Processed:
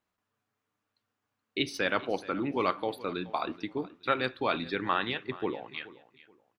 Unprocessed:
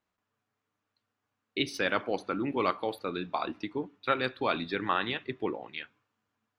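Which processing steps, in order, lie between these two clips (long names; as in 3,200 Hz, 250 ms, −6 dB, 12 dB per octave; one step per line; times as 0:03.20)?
repeating echo 426 ms, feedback 26%, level −18.5 dB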